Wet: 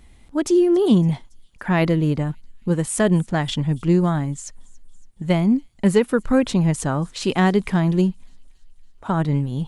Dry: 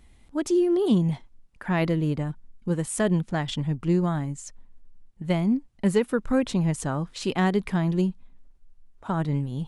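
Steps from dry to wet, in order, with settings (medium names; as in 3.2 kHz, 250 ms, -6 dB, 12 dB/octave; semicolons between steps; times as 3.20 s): feedback echo behind a high-pass 280 ms, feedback 62%, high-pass 4.7 kHz, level -22 dB; trim +5.5 dB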